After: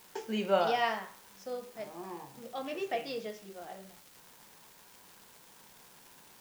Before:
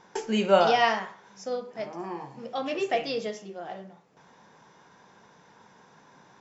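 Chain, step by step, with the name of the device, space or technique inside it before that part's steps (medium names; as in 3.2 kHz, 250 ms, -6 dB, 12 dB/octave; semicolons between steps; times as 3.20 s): 78 rpm shellac record (band-pass 110–5800 Hz; crackle 310 per s -37 dBFS; white noise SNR 22 dB); trim -7.5 dB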